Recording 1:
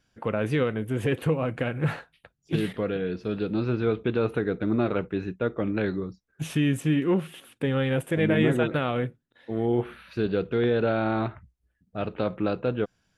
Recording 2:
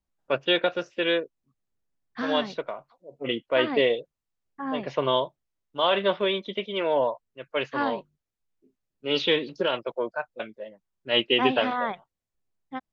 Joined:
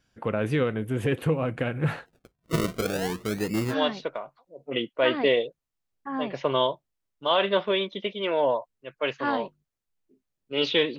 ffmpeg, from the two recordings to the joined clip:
ffmpeg -i cue0.wav -i cue1.wav -filter_complex "[0:a]asplit=3[link_01][link_02][link_03];[link_01]afade=type=out:start_time=2.05:duration=0.02[link_04];[link_02]acrusher=samples=36:mix=1:aa=0.000001:lfo=1:lforange=36:lforate=0.49,afade=type=in:start_time=2.05:duration=0.02,afade=type=out:start_time=3.75:duration=0.02[link_05];[link_03]afade=type=in:start_time=3.75:duration=0.02[link_06];[link_04][link_05][link_06]amix=inputs=3:normalize=0,apad=whole_dur=10.98,atrim=end=10.98,atrim=end=3.75,asetpts=PTS-STARTPTS[link_07];[1:a]atrim=start=2.2:end=9.51,asetpts=PTS-STARTPTS[link_08];[link_07][link_08]acrossfade=duration=0.08:curve1=tri:curve2=tri" out.wav

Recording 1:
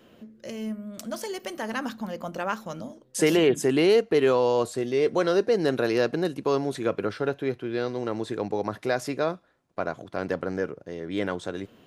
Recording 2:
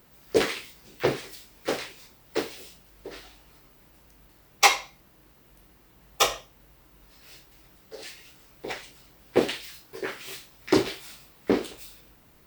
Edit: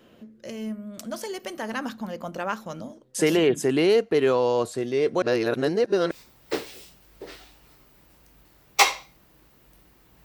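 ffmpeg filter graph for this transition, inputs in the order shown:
ffmpeg -i cue0.wav -i cue1.wav -filter_complex "[0:a]apad=whole_dur=10.24,atrim=end=10.24,asplit=2[link_01][link_02];[link_01]atrim=end=5.222[link_03];[link_02]atrim=start=5.218:end=6.112,asetpts=PTS-STARTPTS,areverse[link_04];[1:a]atrim=start=1.948:end=6.08[link_05];[link_03][link_04]acrossfade=duration=0.004:curve1=hsin:curve2=hsin[link_06];[link_06][link_05]acrossfade=duration=0.004:curve1=hsin:curve2=hsin" out.wav

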